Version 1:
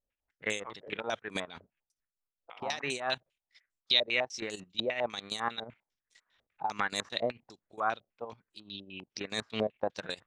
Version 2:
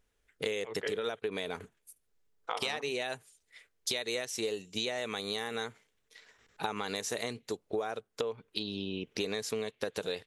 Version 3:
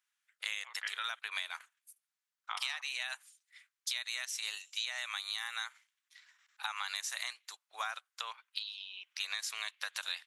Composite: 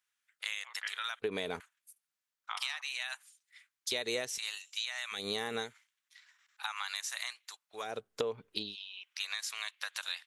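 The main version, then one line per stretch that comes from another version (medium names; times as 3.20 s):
3
1.20–1.60 s: from 2
3.92–4.38 s: from 2
5.19–5.67 s: from 2, crossfade 0.16 s
7.85–8.64 s: from 2, crossfade 0.24 s
not used: 1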